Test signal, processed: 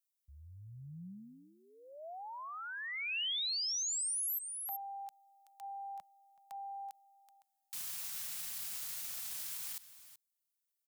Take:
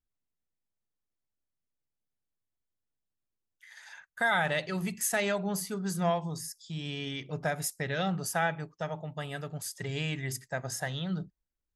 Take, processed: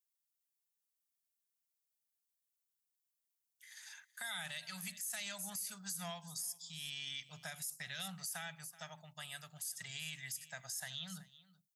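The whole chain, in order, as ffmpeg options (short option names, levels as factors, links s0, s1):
-filter_complex "[0:a]aderivative,acrossover=split=390|3000[s0][s1][s2];[s1]acompressor=threshold=0.00282:ratio=2.5[s3];[s0][s3][s2]amix=inputs=3:normalize=0,firequalizer=gain_entry='entry(180,0);entry(350,-28);entry(650,-10)':delay=0.05:min_phase=1,asplit=2[s4][s5];[s5]aecho=0:1:378:0.1[s6];[s4][s6]amix=inputs=2:normalize=0,alimiter=level_in=15:limit=0.0631:level=0:latency=1:release=43,volume=0.0668,volume=5.62"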